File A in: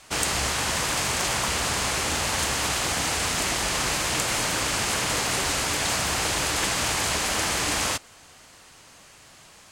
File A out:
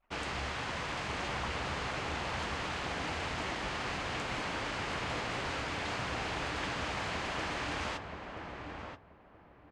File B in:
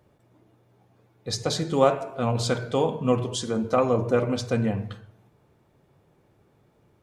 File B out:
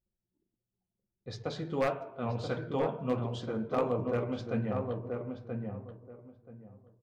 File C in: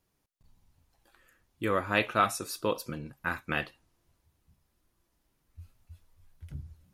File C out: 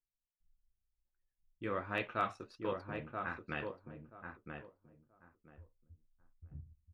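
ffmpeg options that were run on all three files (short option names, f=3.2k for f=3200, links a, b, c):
-filter_complex "[0:a]lowpass=3.1k,anlmdn=0.0158,aeval=exprs='0.266*(abs(mod(val(0)/0.266+3,4)-2)-1)':c=same,flanger=delay=6.6:depth=9.1:regen=-60:speed=1.5:shape=triangular,asplit=2[a][b];[b]adelay=980,lowpass=f=1.2k:p=1,volume=-4dB,asplit=2[c][d];[d]adelay=980,lowpass=f=1.2k:p=1,volume=0.22,asplit=2[e][f];[f]adelay=980,lowpass=f=1.2k:p=1,volume=0.22[g];[a][c][e][g]amix=inputs=4:normalize=0,volume=-5dB"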